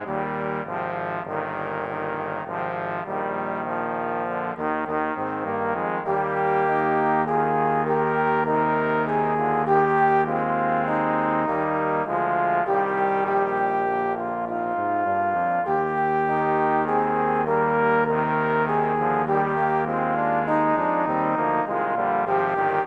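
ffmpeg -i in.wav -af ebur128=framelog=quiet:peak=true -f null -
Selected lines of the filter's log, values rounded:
Integrated loudness:
  I:         -23.1 LUFS
  Threshold: -33.1 LUFS
Loudness range:
  LRA:         5.9 LU
  Threshold: -43.0 LUFS
  LRA low:   -27.4 LUFS
  LRA high:  -21.5 LUFS
True peak:
  Peak:       -8.6 dBFS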